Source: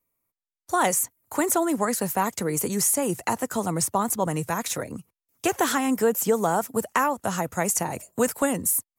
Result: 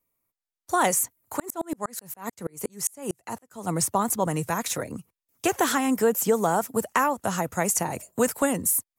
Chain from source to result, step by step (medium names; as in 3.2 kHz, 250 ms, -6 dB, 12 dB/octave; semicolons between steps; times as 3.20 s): 1.37–3.67 s: sawtooth tremolo in dB swelling 10 Hz -> 2.9 Hz, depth 37 dB